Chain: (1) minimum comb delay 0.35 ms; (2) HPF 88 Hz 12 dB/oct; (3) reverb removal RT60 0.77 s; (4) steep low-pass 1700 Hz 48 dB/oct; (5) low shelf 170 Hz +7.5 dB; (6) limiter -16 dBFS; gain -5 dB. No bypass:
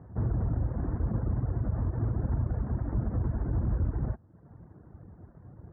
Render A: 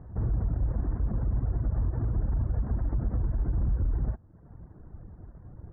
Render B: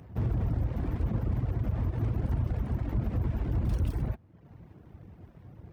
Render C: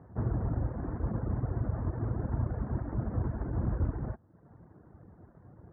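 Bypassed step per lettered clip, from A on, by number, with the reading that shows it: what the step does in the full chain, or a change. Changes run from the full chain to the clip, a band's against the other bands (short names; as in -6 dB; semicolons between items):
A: 2, 125 Hz band +2.5 dB; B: 4, momentary loudness spread change +3 LU; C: 5, 125 Hz band -3.5 dB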